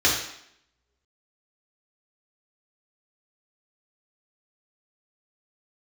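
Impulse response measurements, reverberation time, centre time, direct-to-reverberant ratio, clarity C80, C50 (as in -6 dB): 0.70 s, 40 ms, -5.5 dB, 7.0 dB, 3.5 dB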